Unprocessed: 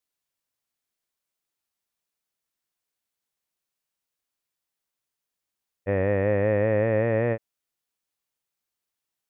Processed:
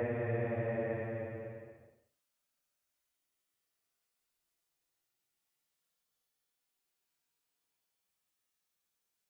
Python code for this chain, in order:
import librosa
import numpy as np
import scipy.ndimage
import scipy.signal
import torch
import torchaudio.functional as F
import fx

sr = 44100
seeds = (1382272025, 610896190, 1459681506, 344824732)

y = x + 10.0 ** (-11.0 / 20.0) * np.pad(x, (int(124 * sr / 1000.0), 0))[:len(x)]
y = fx.paulstretch(y, sr, seeds[0], factor=14.0, window_s=0.1, from_s=7.39)